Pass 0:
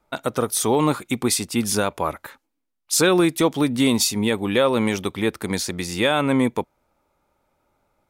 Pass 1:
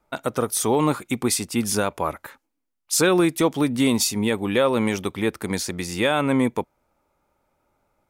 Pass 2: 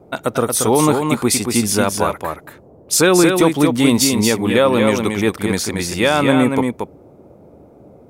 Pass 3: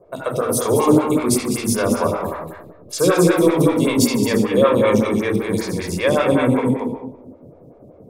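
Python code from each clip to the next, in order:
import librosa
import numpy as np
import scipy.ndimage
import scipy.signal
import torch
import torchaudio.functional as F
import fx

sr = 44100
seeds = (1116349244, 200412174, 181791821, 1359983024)

y1 = fx.peak_eq(x, sr, hz=3800.0, db=-3.0, octaves=0.55)
y1 = F.gain(torch.from_numpy(y1), -1.0).numpy()
y2 = fx.dmg_noise_band(y1, sr, seeds[0], low_hz=66.0, high_hz=590.0, level_db=-51.0)
y2 = y2 + 10.0 ** (-5.0 / 20.0) * np.pad(y2, (int(229 * sr / 1000.0), 0))[:len(y2)]
y2 = F.gain(torch.from_numpy(y2), 5.5).numpy()
y3 = fx.room_shoebox(y2, sr, seeds[1], volume_m3=3500.0, walls='furnished', distance_m=5.5)
y3 = fx.stagger_phaser(y3, sr, hz=5.2)
y3 = F.gain(torch.from_numpy(y3), -4.5).numpy()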